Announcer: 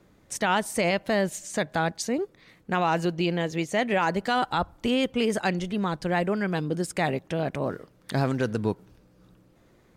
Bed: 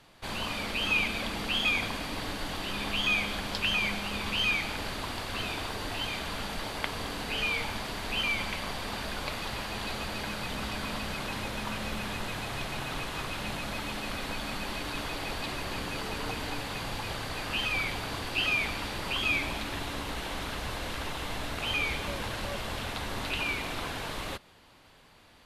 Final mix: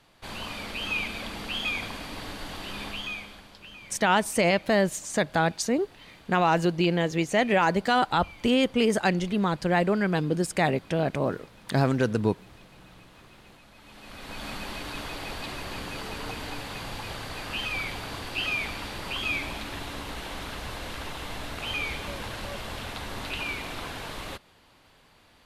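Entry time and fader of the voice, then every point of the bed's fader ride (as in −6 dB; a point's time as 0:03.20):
3.60 s, +2.0 dB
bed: 0:02.84 −2.5 dB
0:03.62 −18.5 dB
0:13.74 −18.5 dB
0:14.45 −1 dB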